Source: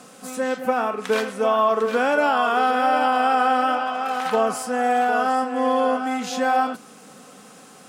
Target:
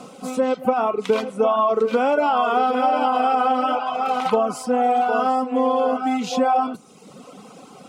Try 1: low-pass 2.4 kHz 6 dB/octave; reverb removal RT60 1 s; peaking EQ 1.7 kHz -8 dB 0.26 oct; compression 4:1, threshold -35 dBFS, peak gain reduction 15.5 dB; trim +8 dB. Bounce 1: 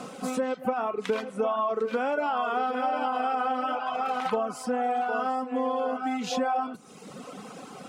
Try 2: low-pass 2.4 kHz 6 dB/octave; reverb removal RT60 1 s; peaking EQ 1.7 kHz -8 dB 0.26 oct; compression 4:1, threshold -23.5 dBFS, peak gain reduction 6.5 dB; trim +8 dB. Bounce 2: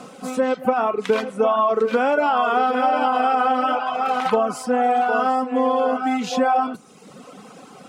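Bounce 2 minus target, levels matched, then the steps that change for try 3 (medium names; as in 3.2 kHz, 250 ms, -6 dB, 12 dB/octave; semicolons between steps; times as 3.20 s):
2 kHz band +3.5 dB
change: peaking EQ 1.7 kHz -19.5 dB 0.26 oct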